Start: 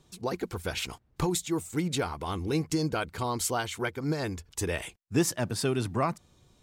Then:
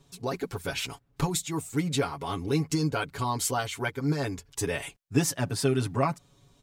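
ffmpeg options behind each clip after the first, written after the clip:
-af "aecho=1:1:7.2:0.83,volume=-1dB"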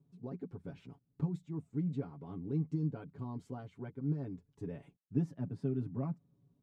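-af "bandpass=f=190:t=q:w=1.8:csg=0,volume=-3.5dB"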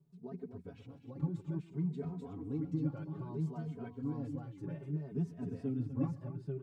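-filter_complex "[0:a]asplit=2[a][b];[b]aecho=0:1:132|249|618|839:0.112|0.316|0.188|0.708[c];[a][c]amix=inputs=2:normalize=0,asplit=2[d][e];[e]adelay=2.9,afreqshift=0.61[f];[d][f]amix=inputs=2:normalize=1,volume=1dB"

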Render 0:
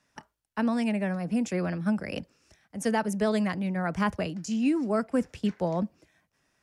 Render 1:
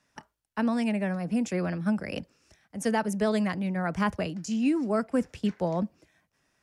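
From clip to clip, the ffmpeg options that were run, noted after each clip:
-af anull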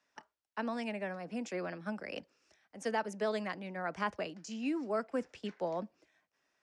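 -filter_complex "[0:a]acrossover=split=280 7500:gain=0.158 1 0.112[a][b][c];[a][b][c]amix=inputs=3:normalize=0,volume=-5.5dB"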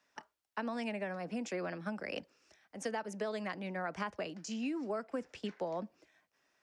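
-af "acompressor=threshold=-37dB:ratio=6,volume=3dB"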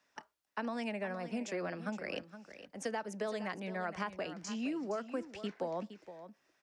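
-af "aecho=1:1:466:0.237"

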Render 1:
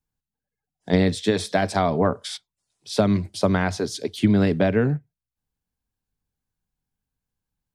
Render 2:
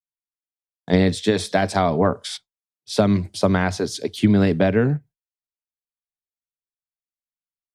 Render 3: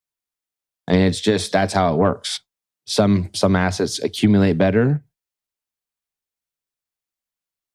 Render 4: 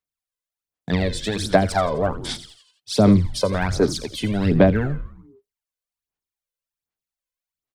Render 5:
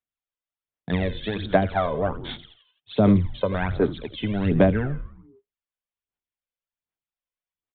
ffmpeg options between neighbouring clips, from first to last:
-af "agate=range=-33dB:threshold=-38dB:ratio=3:detection=peak,volume=2dB"
-filter_complex "[0:a]asplit=2[a][b];[b]acompressor=threshold=-27dB:ratio=6,volume=1dB[c];[a][c]amix=inputs=2:normalize=0,asoftclip=type=tanh:threshold=-2.5dB"
-filter_complex "[0:a]asplit=6[a][b][c][d][e][f];[b]adelay=85,afreqshift=-110,volume=-13dB[g];[c]adelay=170,afreqshift=-220,volume=-19dB[h];[d]adelay=255,afreqshift=-330,volume=-25dB[i];[e]adelay=340,afreqshift=-440,volume=-31.1dB[j];[f]adelay=425,afreqshift=-550,volume=-37.1dB[k];[a][g][h][i][j][k]amix=inputs=6:normalize=0,aphaser=in_gain=1:out_gain=1:delay=2:decay=0.65:speed=1.3:type=sinusoidal,volume=-6dB"
-af "aresample=8000,aresample=44100,volume=-3dB"

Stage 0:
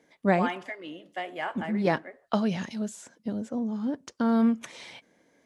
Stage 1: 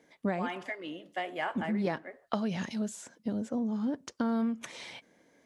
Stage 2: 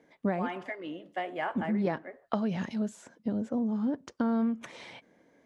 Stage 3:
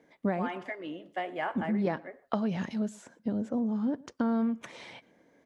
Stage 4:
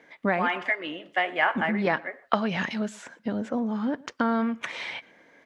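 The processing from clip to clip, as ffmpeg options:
-af "acompressor=threshold=-27dB:ratio=10"
-af "highshelf=f=3.1k:g=-11.5,volume=2dB"
-filter_complex "[0:a]asplit=2[a][b];[b]adelay=116.6,volume=-24dB,highshelf=f=4k:g=-2.62[c];[a][c]amix=inputs=2:normalize=0"
-af "equalizer=f=2.1k:w=0.4:g=14.5"

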